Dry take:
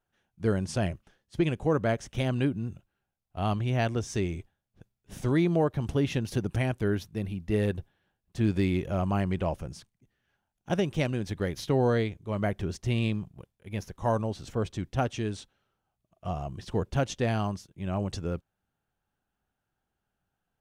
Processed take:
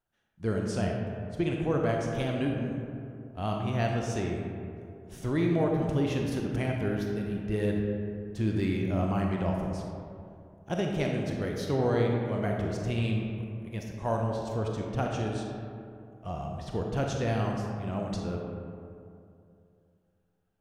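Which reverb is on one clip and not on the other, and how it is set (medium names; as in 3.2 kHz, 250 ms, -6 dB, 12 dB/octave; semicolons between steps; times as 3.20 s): algorithmic reverb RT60 2.6 s, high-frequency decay 0.4×, pre-delay 0 ms, DRR 0 dB; trim -4 dB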